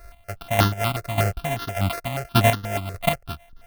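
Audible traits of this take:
a buzz of ramps at a fixed pitch in blocks of 64 samples
chopped level 1.7 Hz, depth 65%, duty 25%
aliases and images of a low sample rate 7,200 Hz, jitter 0%
notches that jump at a steady rate 8.3 Hz 860–2,300 Hz

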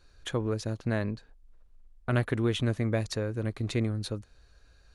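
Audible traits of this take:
background noise floor −60 dBFS
spectral slope −6.0 dB per octave

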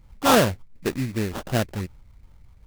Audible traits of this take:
phaser sweep stages 4, 2.7 Hz, lowest notch 640–1,900 Hz
aliases and images of a low sample rate 2,200 Hz, jitter 20%

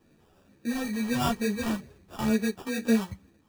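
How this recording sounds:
phaser sweep stages 2, 2.2 Hz, lowest notch 420–1,400 Hz
aliases and images of a low sample rate 2,100 Hz, jitter 0%
a shimmering, thickened sound

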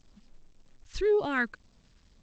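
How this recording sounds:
phaser sweep stages 2, 1.9 Hz, lowest notch 580–1,500 Hz
a quantiser's noise floor 12 bits, dither none
G.722

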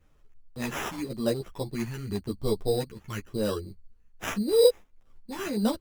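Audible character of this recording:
phaser sweep stages 2, 0.9 Hz, lowest notch 560–3,500 Hz
aliases and images of a low sample rate 4,400 Hz, jitter 0%
a shimmering, thickened sound

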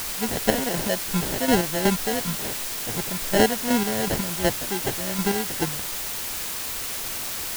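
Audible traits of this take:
aliases and images of a low sample rate 1,200 Hz, jitter 0%
chopped level 2.7 Hz, depth 60%, duty 35%
a quantiser's noise floor 6 bits, dither triangular

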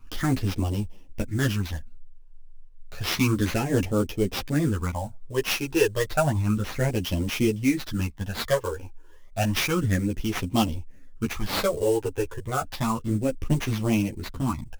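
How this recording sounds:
phaser sweep stages 12, 0.31 Hz, lowest notch 200–1,600 Hz
aliases and images of a low sample rate 8,500 Hz, jitter 20%
a shimmering, thickened sound

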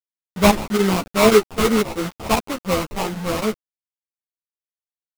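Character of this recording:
aliases and images of a low sample rate 1,700 Hz, jitter 20%
chopped level 3.8 Hz, depth 65%, duty 90%
a quantiser's noise floor 6 bits, dither none
a shimmering, thickened sound

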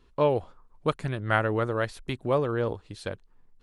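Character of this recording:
background noise floor −61 dBFS
spectral slope −5.5 dB per octave

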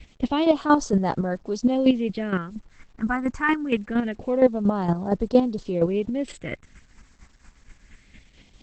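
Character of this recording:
phaser sweep stages 4, 0.24 Hz, lowest notch 560–2,400 Hz
chopped level 4.3 Hz, depth 60%, duty 20%
a quantiser's noise floor 10 bits, dither none
Opus

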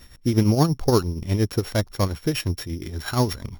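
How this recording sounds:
a buzz of ramps at a fixed pitch in blocks of 8 samples
tremolo triangle 8.5 Hz, depth 70%

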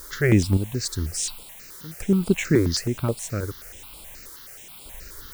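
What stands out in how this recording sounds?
sample-and-hold tremolo, depth 95%
a quantiser's noise floor 8 bits, dither triangular
notches that jump at a steady rate 9.4 Hz 720–6,100 Hz

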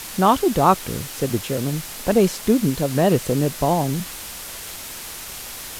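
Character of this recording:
a quantiser's noise floor 6 bits, dither triangular
Ogg Vorbis

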